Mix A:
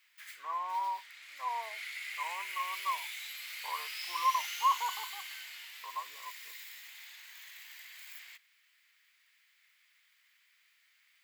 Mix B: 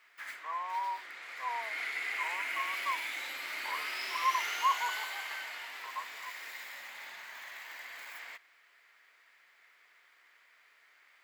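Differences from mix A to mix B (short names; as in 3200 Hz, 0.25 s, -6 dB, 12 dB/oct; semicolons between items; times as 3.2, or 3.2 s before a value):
background: remove differentiator; master: add bell 3000 Hz -6.5 dB 1.5 oct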